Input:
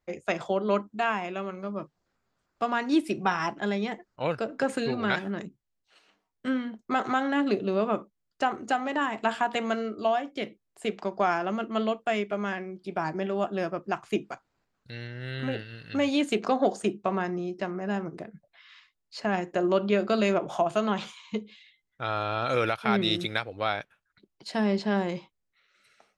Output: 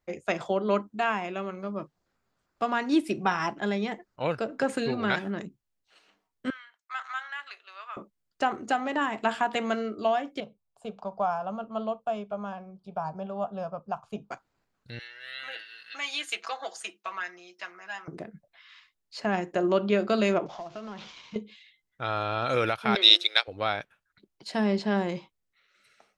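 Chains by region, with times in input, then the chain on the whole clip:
6.5–7.97 HPF 1300 Hz 24 dB/oct + high shelf 2400 Hz -8.5 dB
10.4–14.31 LPF 1700 Hz 6 dB/oct + fixed phaser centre 810 Hz, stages 4
14.99–18.08 HPF 1400 Hz + notch 7800 Hz, Q 11 + comb 6.1 ms, depth 78%
20.46–21.36 CVSD 32 kbps + compressor 2.5:1, threshold -42 dBFS
22.95–23.48 gate -30 dBFS, range -8 dB + inverse Chebyshev high-pass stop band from 160 Hz, stop band 50 dB + bell 4200 Hz +13.5 dB 1.7 oct
whole clip: dry

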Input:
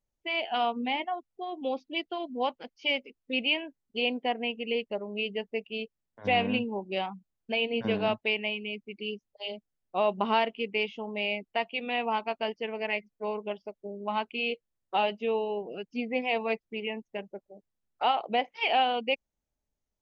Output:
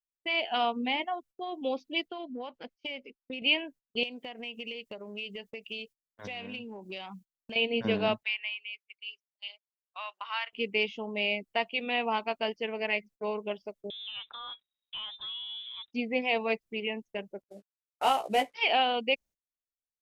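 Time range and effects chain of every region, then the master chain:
2.08–3.42 LPF 3600 Hz 6 dB/oct + compressor 8:1, threshold -34 dBFS
4.03–7.56 compressor 16:1, threshold -38 dBFS + high shelf 2100 Hz +9.5 dB
8.23–10.53 HPF 1200 Hz 24 dB/oct + high shelf 3100 Hz -10 dB
13.9–15.93 G.711 law mismatch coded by mu + compressor 2.5:1, threshold -46 dBFS + inverted band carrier 3800 Hz
17.42–18.54 CVSD 64 kbps + high shelf 3500 Hz -6.5 dB + doubler 15 ms -4.5 dB
whole clip: bell 810 Hz -3 dB 0.25 oct; gate -51 dBFS, range -25 dB; high shelf 4400 Hz +6.5 dB

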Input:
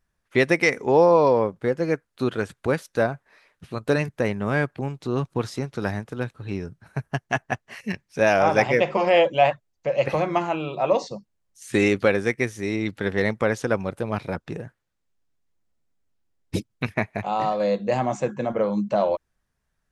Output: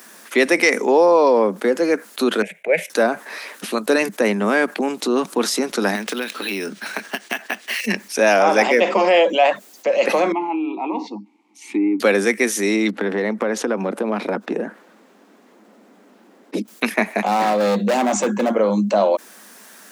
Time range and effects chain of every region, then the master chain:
2.42–2.9 EQ curve 170 Hz 0 dB, 250 Hz -22 dB, 420 Hz -4 dB, 620 Hz +6 dB, 1200 Hz -23 dB, 2200 Hz +11 dB, 4400 Hz -24 dB, 7400 Hz -19 dB + three-band expander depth 100%
5.95–7.86 weighting filter D + compressor 5:1, threshold -35 dBFS + decimation joined by straight lines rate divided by 3×
10.32–12 vowel filter u + high shelf 4200 Hz -7 dB + treble ducked by the level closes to 1400 Hz, closed at -24 dBFS
12.9–16.68 LPF 1400 Hz 6 dB/oct + compressor, threshold -25 dBFS + mismatched tape noise reduction decoder only
17.24–18.51 HPF 64 Hz 24 dB/oct + bell 170 Hz +13.5 dB 0.37 oct + hard clip -21.5 dBFS
whole clip: steep high-pass 200 Hz 72 dB/oct; high shelf 6400 Hz +11 dB; fast leveller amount 50%; gain +1.5 dB

